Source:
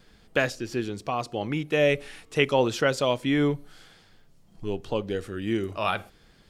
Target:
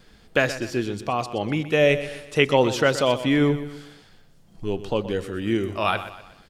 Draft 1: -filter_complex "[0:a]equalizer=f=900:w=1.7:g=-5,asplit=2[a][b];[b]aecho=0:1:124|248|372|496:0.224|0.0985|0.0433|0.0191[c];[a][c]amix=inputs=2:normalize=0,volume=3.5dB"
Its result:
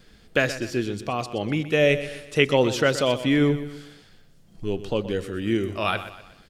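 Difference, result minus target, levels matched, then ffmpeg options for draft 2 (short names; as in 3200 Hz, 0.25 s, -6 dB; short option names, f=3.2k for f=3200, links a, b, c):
1000 Hz band -2.5 dB
-filter_complex "[0:a]asplit=2[a][b];[b]aecho=0:1:124|248|372|496:0.224|0.0985|0.0433|0.0191[c];[a][c]amix=inputs=2:normalize=0,volume=3.5dB"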